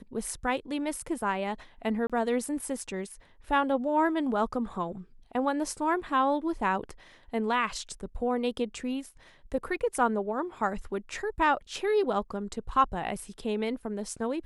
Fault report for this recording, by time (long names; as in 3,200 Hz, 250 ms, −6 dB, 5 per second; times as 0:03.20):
0:02.07–0:02.10: drop-out 26 ms